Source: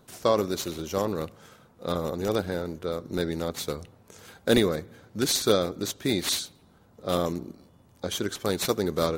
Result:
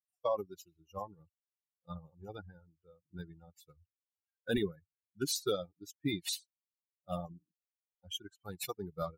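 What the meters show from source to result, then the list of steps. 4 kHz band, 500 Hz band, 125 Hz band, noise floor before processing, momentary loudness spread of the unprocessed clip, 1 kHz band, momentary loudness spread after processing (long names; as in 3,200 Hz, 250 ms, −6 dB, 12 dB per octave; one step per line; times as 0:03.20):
−12.0 dB, −13.5 dB, −12.0 dB, −58 dBFS, 14 LU, −11.5 dB, 16 LU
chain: spectral dynamics exaggerated over time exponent 3
brickwall limiter −23 dBFS, peak gain reduction 10 dB
expander for the loud parts 1.5 to 1, over −51 dBFS
level +1 dB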